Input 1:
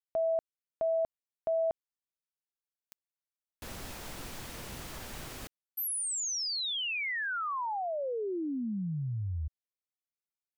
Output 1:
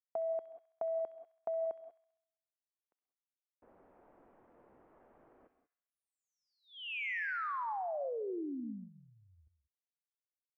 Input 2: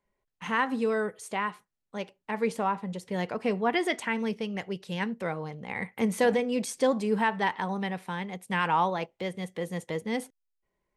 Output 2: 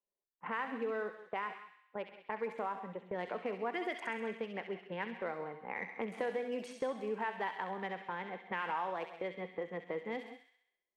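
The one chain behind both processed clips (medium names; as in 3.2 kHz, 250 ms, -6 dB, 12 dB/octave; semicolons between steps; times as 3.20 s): local Wiener filter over 9 samples; three-band isolator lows -19 dB, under 270 Hz, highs -17 dB, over 2.7 kHz; gate -45 dBFS, range -13 dB; treble shelf 4.2 kHz +7.5 dB; in parallel at -2 dB: peak limiter -21.5 dBFS; on the sum: level-controlled noise filter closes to 770 Hz, open at -22.5 dBFS; compression 2.5:1, threshold -33 dBFS; on a send: feedback echo behind a high-pass 66 ms, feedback 59%, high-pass 2.5 kHz, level -3 dB; on the sum: gated-style reverb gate 210 ms rising, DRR 11.5 dB; trim -5 dB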